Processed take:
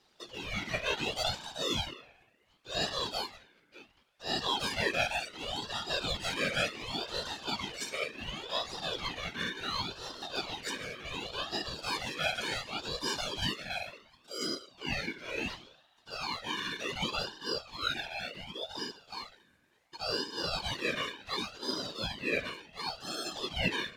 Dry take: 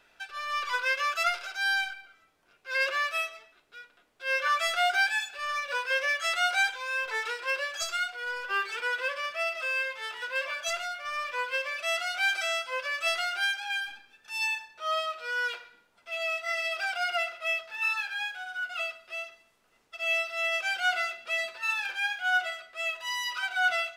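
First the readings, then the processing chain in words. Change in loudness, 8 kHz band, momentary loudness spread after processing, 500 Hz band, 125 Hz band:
-5.5 dB, -2.5 dB, 9 LU, -2.0 dB, n/a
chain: tape echo 66 ms, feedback 89%, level -21 dB, low-pass 2400 Hz; whisperiser; ring modulator with a swept carrier 1600 Hz, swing 45%, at 0.69 Hz; gain -2.5 dB

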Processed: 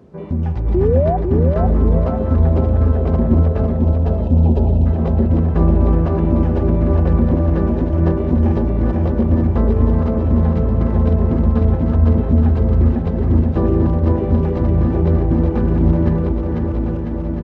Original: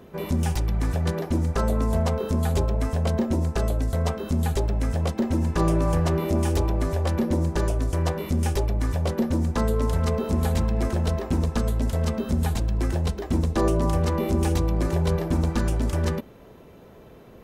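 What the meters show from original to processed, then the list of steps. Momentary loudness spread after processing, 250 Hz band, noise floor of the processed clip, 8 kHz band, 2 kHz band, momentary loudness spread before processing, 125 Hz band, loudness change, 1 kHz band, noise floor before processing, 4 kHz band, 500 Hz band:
3 LU, +9.0 dB, -21 dBFS, under -20 dB, -1.5 dB, 3 LU, +9.5 dB, +8.5 dB, +4.0 dB, -47 dBFS, under -10 dB, +7.0 dB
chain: regenerating reverse delay 0.653 s, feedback 57%, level -3 dB; HPF 68 Hz; spectral delete 3.77–4.86, 1000–2400 Hz; tilt -1.5 dB/oct; AGC gain up to 3.5 dB; painted sound rise, 0.74–1.17, 340–770 Hz -15 dBFS; added noise violet -45 dBFS; tape spacing loss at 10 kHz 39 dB; feedback echo 0.5 s, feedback 44%, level -4.5 dB

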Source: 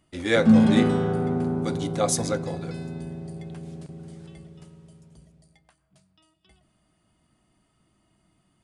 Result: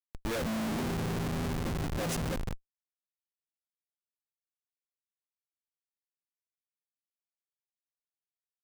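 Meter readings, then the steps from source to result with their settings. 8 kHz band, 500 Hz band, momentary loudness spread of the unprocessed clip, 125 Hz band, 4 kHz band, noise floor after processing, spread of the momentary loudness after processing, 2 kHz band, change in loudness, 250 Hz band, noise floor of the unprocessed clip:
-11.0 dB, -12.5 dB, 22 LU, -8.5 dB, -8.0 dB, under -85 dBFS, 5 LU, -9.5 dB, -11.0 dB, -14.5 dB, -69 dBFS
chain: Schmitt trigger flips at -24.5 dBFS; gain -5.5 dB

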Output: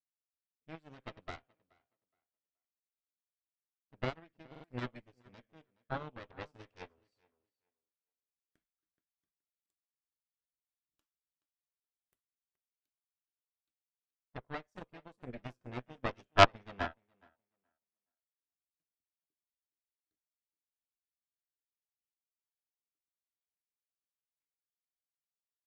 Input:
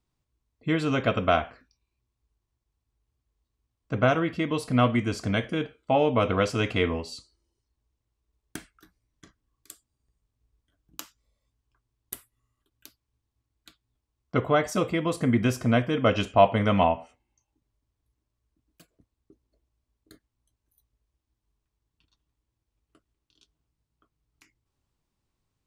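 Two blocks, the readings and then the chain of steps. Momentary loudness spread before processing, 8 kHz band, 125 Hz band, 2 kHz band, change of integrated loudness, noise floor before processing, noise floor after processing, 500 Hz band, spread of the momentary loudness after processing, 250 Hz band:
19 LU, -14.0 dB, -16.0 dB, -9.0 dB, -9.0 dB, -83 dBFS, under -85 dBFS, -14.0 dB, 27 LU, -21.0 dB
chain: high shelf 6300 Hz -7 dB; added harmonics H 2 -11 dB, 3 -14 dB, 4 -6 dB, 6 -28 dB, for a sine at -5 dBFS; on a send: tape echo 0.423 s, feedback 22%, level -10 dB, low-pass 3700 Hz; on the sum: stuck buffer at 4.5, samples 2048, times 2; upward expander 2.5:1, over -37 dBFS; gain -1.5 dB

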